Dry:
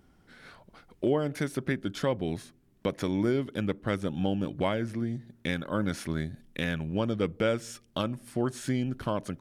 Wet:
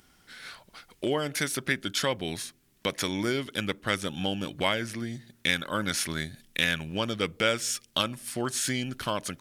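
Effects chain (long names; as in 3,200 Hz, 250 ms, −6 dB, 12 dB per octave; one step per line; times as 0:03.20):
tilt shelving filter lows −9 dB, about 1,300 Hz
level +5 dB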